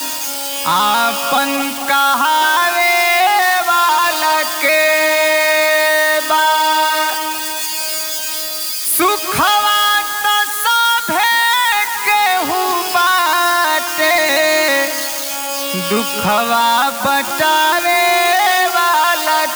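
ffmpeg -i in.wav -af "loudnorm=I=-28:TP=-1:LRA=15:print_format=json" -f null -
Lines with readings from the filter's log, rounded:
"input_i" : "-13.2",
"input_tp" : "-4.0",
"input_lra" : "2.4",
"input_thresh" : "-23.2",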